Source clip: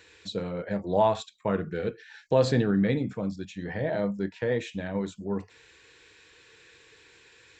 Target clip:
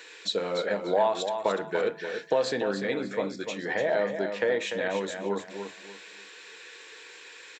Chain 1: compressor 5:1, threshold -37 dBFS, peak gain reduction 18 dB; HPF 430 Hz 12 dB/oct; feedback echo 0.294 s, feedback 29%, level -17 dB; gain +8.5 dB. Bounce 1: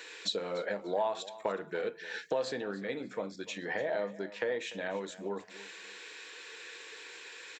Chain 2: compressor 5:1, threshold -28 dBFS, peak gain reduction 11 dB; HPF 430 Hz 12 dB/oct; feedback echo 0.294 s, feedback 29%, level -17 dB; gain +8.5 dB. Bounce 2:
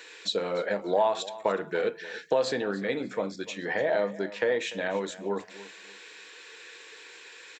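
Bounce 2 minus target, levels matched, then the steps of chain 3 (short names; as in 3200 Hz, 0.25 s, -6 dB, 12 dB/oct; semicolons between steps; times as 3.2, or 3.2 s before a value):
echo-to-direct -9.5 dB
compressor 5:1, threshold -28 dBFS, peak gain reduction 11 dB; HPF 430 Hz 12 dB/oct; feedback echo 0.294 s, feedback 29%, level -7.5 dB; gain +8.5 dB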